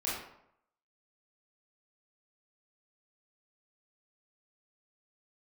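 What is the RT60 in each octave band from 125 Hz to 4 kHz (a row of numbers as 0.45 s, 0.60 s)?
0.75 s, 0.70 s, 0.75 s, 0.75 s, 0.60 s, 0.45 s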